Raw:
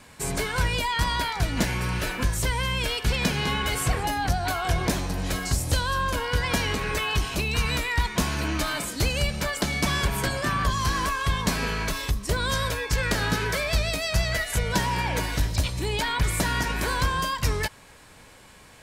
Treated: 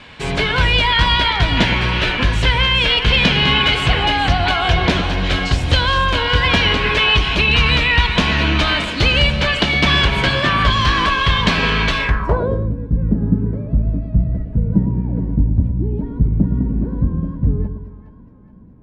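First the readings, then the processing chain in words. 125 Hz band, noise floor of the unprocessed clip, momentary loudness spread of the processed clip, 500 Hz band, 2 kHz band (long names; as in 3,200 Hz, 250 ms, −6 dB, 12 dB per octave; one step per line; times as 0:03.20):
+9.5 dB, −50 dBFS, 7 LU, +7.5 dB, +10.5 dB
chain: echo with a time of its own for lows and highs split 760 Hz, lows 111 ms, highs 419 ms, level −8.5 dB
low-pass filter sweep 3,200 Hz → 230 Hz, 0:11.95–0:12.72
level +8 dB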